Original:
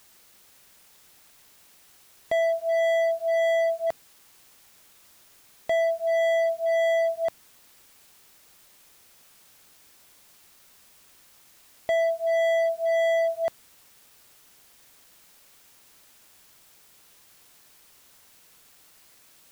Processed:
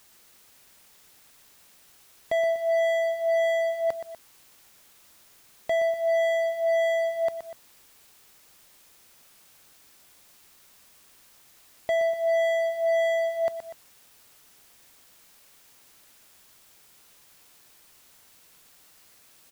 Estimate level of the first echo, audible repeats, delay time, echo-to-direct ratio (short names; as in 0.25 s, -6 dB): -10.0 dB, 2, 0.122 s, -8.5 dB